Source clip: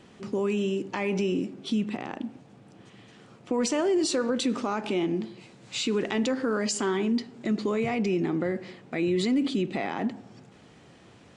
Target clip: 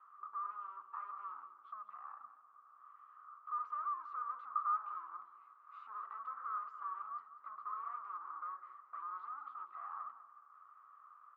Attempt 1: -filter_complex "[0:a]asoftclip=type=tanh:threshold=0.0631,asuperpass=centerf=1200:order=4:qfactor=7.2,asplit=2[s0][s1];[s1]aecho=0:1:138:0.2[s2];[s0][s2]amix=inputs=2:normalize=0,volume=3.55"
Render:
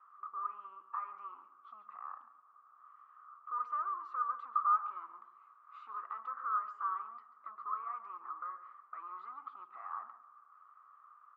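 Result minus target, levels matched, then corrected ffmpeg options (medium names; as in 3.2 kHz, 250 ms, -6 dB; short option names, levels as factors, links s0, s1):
echo 58 ms early; saturation: distortion -9 dB
-filter_complex "[0:a]asoftclip=type=tanh:threshold=0.0188,asuperpass=centerf=1200:order=4:qfactor=7.2,asplit=2[s0][s1];[s1]aecho=0:1:196:0.2[s2];[s0][s2]amix=inputs=2:normalize=0,volume=3.55"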